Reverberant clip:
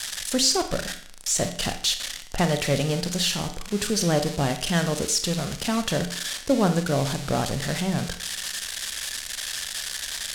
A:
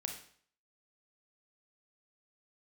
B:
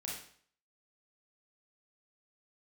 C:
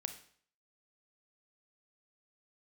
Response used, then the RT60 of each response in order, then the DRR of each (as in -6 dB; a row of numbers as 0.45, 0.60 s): C; 0.55, 0.55, 0.55 s; 3.0, -4.0, 7.5 dB